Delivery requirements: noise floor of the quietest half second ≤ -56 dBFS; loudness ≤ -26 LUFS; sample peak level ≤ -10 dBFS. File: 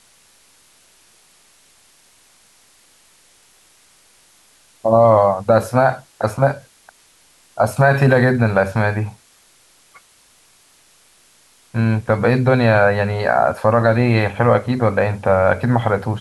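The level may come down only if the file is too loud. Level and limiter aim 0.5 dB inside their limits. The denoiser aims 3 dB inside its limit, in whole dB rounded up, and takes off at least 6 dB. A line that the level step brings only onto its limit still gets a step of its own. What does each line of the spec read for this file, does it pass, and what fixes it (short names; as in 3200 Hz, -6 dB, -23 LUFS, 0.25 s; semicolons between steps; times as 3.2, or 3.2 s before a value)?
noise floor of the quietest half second -53 dBFS: fail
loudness -16.5 LUFS: fail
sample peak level -3.5 dBFS: fail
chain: gain -10 dB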